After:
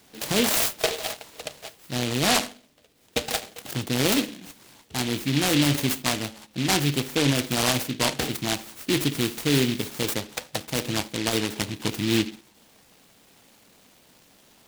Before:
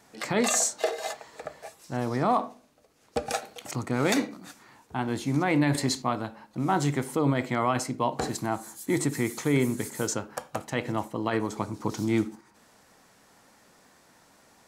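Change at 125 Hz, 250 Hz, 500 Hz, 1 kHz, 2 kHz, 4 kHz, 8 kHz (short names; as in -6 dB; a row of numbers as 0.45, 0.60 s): +2.5, +2.0, +0.5, -2.5, +4.5, +12.0, +3.5 dB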